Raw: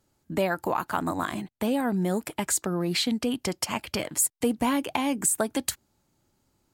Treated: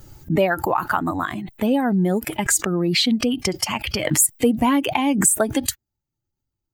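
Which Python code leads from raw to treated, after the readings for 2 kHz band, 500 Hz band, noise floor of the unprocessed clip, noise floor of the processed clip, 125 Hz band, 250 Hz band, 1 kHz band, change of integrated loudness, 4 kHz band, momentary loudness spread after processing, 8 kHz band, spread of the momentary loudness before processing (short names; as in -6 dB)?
+8.0 dB, +6.5 dB, -72 dBFS, -83 dBFS, +8.5 dB, +7.0 dB, +6.5 dB, +7.0 dB, +7.5 dB, 8 LU, +7.0 dB, 6 LU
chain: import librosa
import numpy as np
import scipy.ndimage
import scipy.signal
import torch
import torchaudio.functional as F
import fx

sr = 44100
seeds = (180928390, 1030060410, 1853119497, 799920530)

y = fx.bin_expand(x, sr, power=1.5)
y = fx.pre_swell(y, sr, db_per_s=56.0)
y = y * librosa.db_to_amplitude(8.5)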